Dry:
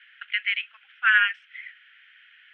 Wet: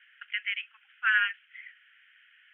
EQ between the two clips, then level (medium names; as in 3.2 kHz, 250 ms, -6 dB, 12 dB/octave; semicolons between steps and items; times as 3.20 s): elliptic band-pass 820–3100 Hz, stop band 40 dB; -5.5 dB